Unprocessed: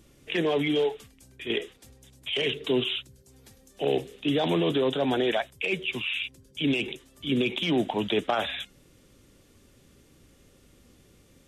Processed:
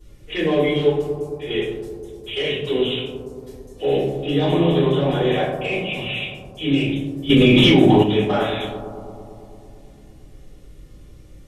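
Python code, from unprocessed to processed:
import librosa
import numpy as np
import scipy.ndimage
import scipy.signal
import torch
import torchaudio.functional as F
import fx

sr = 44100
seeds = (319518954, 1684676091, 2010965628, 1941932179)

y = fx.low_shelf(x, sr, hz=150.0, db=8.0)
y = fx.echo_bbd(y, sr, ms=112, stages=1024, feedback_pct=78, wet_db=-9)
y = fx.room_shoebox(y, sr, seeds[0], volume_m3=71.0, walls='mixed', distance_m=3.5)
y = fx.env_flatten(y, sr, amount_pct=100, at=(7.29, 8.02), fade=0.02)
y = y * 10.0 ** (-10.5 / 20.0)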